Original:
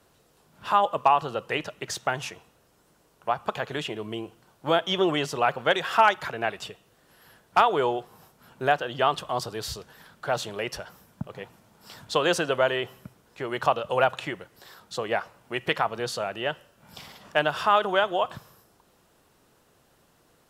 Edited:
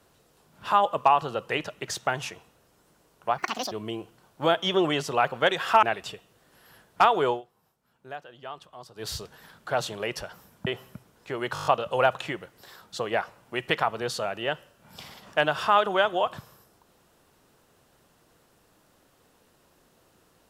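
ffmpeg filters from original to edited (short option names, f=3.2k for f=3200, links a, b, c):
-filter_complex "[0:a]asplit=13[a][b][c][d][e][f][g][h][i][j][k][l][m];[a]atrim=end=3.384[n];[b]atrim=start=3.38:end=3.96,asetpts=PTS-STARTPTS,asetrate=75852,aresample=44100[o];[c]atrim=start=3.956:end=6.072[p];[d]atrim=start=6.388:end=7.98,asetpts=PTS-STARTPTS,afade=t=out:st=1.472:d=0.12:silence=0.149624[q];[e]atrim=start=7.98:end=9.51,asetpts=PTS-STARTPTS,volume=-16.5dB[r];[f]atrim=start=9.51:end=11.232,asetpts=PTS-STARTPTS,afade=t=in:d=0.12:silence=0.149624[s];[g]atrim=start=12.768:end=13.662[t];[h]atrim=start=13.638:end=13.662[u];[i]atrim=start=13.638:end=13.662[v];[j]atrim=start=13.638:end=13.662[w];[k]atrim=start=13.638:end=13.662[x];[l]atrim=start=13.638:end=13.662[y];[m]atrim=start=13.638[z];[n][o]acrossfade=d=0.004:c1=hsin:c2=hsin[aa];[aa][p]acrossfade=d=0.004:c1=hsin:c2=hsin[ab];[q][r][s]concat=n=3:v=0:a=1[ac];[ab][ac]acrossfade=d=0.004:c1=hsin:c2=hsin[ad];[ad][t]acrossfade=d=0.004:c1=hsin:c2=hsin[ae];[ae][u]acrossfade=d=0.004:c1=hsin:c2=hsin[af];[af][v]acrossfade=d=0.004:c1=hsin:c2=hsin[ag];[ag][w]acrossfade=d=0.004:c1=hsin:c2=hsin[ah];[ah][x]acrossfade=d=0.004:c1=hsin:c2=hsin[ai];[ai][y]acrossfade=d=0.004:c1=hsin:c2=hsin[aj];[aj][z]acrossfade=d=0.004:c1=hsin:c2=hsin"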